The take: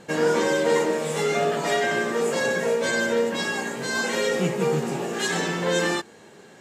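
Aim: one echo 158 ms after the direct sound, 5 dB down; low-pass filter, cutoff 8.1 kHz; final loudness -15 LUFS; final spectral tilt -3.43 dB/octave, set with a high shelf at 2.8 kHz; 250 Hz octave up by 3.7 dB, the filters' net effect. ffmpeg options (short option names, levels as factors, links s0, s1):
-af "lowpass=8100,equalizer=f=250:t=o:g=5,highshelf=f=2800:g=6.5,aecho=1:1:158:0.562,volume=1.88"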